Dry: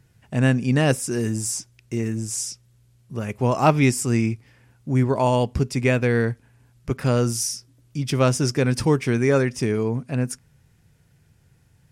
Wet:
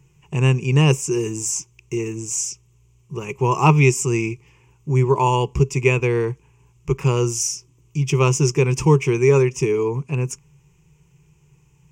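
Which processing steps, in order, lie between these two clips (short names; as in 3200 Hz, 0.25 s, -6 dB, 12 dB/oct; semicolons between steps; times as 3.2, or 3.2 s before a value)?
ripple EQ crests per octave 0.73, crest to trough 17 dB; gain -1 dB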